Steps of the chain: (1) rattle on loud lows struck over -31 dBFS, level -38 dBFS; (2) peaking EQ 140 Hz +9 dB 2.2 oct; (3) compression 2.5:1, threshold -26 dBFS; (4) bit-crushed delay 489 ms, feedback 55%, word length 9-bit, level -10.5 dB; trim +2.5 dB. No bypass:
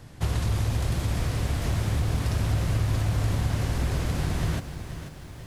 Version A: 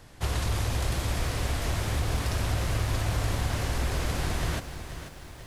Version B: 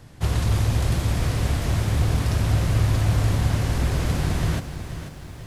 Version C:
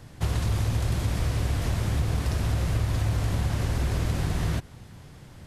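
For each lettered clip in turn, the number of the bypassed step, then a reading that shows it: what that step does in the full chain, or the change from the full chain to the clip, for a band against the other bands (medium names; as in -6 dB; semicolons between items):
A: 2, 125 Hz band -6.5 dB; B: 3, mean gain reduction 3.5 dB; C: 4, momentary loudness spread change -4 LU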